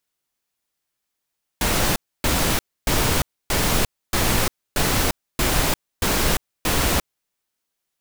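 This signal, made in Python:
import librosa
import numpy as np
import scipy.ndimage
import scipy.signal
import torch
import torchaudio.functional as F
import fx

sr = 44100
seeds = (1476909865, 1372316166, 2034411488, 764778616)

y = fx.noise_burst(sr, seeds[0], colour='pink', on_s=0.35, off_s=0.28, bursts=9, level_db=-19.5)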